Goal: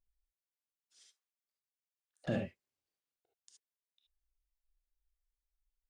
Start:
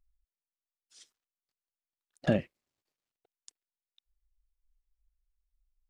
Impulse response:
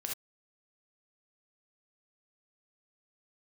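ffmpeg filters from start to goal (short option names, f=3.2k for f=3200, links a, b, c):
-filter_complex "[0:a]asettb=1/sr,asplit=3[a][b][c];[a]atrim=end=0.994[d];[b]atrim=start=0.99:end=2.25,asetpts=PTS-STARTPTS,afade=t=in:d=0.004:c=qsin,afade=t=out:st=1.256:d=0.004:c=qsin,highpass=f=480:w=0.5412,highpass=f=480:w=1.3066[e];[c]atrim=start=2.246[f];[d][e]acrossfade=d=0.004:c1=hsin:c2=qsin[g];[g][f]acrossfade=d=0.004:c1=qsin:c2=hsin[h];[1:a]atrim=start_sample=2205[i];[h][i]afir=irnorm=-1:irlink=0,volume=-7.5dB"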